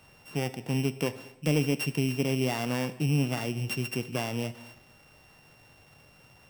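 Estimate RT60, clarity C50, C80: 0.95 s, 15.0 dB, 16.5 dB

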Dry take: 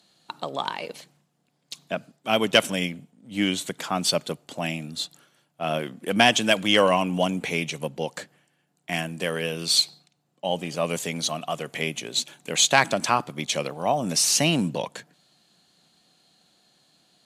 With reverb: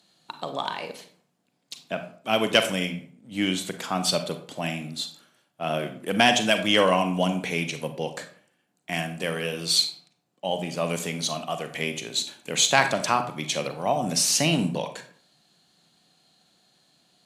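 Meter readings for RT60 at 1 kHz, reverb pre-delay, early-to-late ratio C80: 0.50 s, 34 ms, 14.0 dB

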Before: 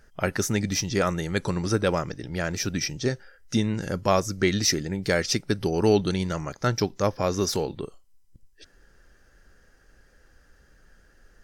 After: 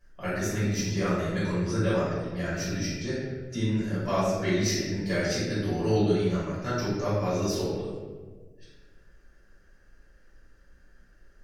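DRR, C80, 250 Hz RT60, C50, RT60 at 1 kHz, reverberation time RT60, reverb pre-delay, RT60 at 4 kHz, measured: -12.0 dB, 1.5 dB, 1.9 s, -1.5 dB, 1.2 s, 1.5 s, 3 ms, 0.90 s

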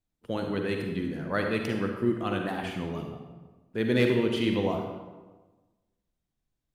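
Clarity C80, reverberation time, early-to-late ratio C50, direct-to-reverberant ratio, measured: 6.0 dB, 1.2 s, 3.5 dB, 2.5 dB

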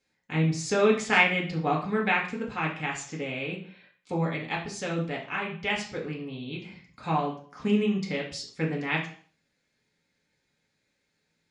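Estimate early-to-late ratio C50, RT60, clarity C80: 7.5 dB, 0.45 s, 12.0 dB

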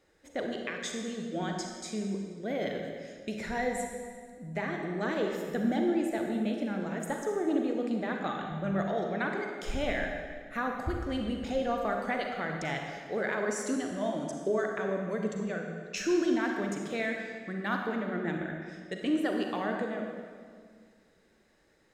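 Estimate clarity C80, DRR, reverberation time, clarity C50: 4.0 dB, 2.0 dB, 1.9 s, 2.5 dB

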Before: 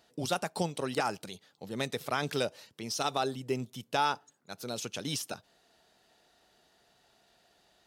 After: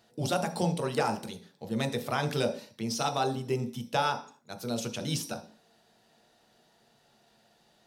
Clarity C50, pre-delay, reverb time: 12.0 dB, 8 ms, 0.45 s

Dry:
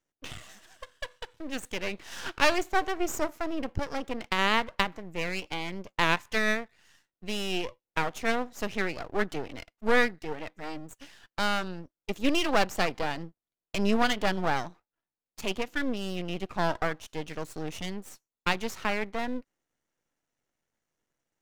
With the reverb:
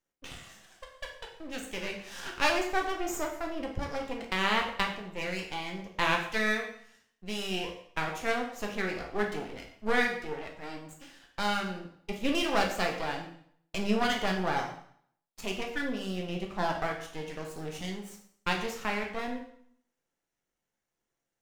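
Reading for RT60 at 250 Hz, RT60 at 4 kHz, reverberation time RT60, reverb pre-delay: 0.60 s, 0.60 s, 0.60 s, 5 ms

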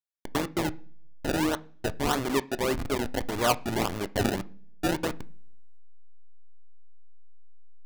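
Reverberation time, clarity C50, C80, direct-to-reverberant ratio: 0.45 s, 22.0 dB, 27.0 dB, 11.5 dB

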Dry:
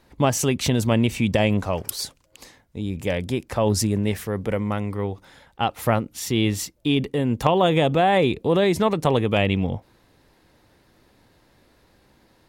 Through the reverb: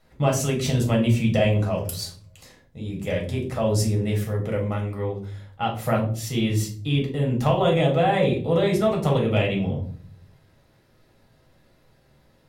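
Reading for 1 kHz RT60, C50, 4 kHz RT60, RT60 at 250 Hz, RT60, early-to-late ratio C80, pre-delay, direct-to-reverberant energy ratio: 0.40 s, 8.5 dB, 0.30 s, 0.80 s, 0.45 s, 13.5 dB, 6 ms, -1.5 dB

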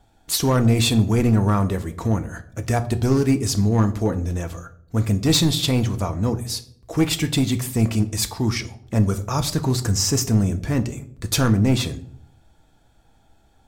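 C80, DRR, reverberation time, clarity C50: 19.5 dB, 8.0 dB, 0.65 s, 16.0 dB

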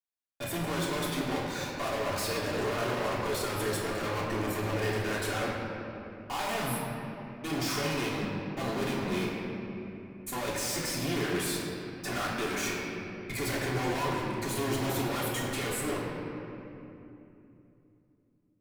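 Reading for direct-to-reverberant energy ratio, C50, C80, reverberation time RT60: -5.5 dB, -0.5 dB, 1.0 dB, 2.9 s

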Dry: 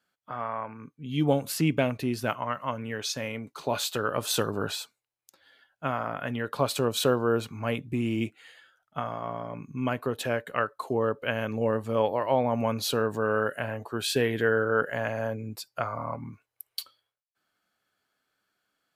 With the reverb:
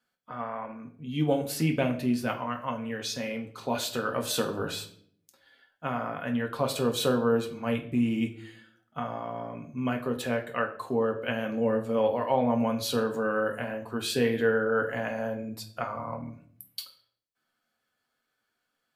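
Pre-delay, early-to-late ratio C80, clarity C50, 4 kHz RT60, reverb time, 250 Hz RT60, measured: 4 ms, 15.5 dB, 11.5 dB, 0.45 s, 0.60 s, 0.90 s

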